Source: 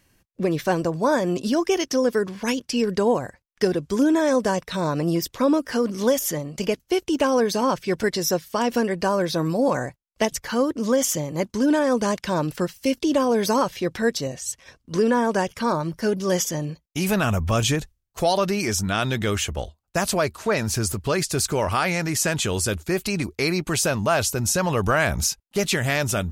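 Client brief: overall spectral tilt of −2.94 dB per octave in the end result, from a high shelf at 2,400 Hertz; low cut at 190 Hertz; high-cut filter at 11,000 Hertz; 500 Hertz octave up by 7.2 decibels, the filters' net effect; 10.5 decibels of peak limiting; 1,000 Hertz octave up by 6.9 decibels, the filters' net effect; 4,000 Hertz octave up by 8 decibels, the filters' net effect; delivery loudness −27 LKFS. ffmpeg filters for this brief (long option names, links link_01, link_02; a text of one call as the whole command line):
ffmpeg -i in.wav -af "highpass=190,lowpass=11000,equalizer=frequency=500:width_type=o:gain=7,equalizer=frequency=1000:width_type=o:gain=5,highshelf=frequency=2400:gain=6.5,equalizer=frequency=4000:width_type=o:gain=4,volume=-5.5dB,alimiter=limit=-16.5dB:level=0:latency=1" out.wav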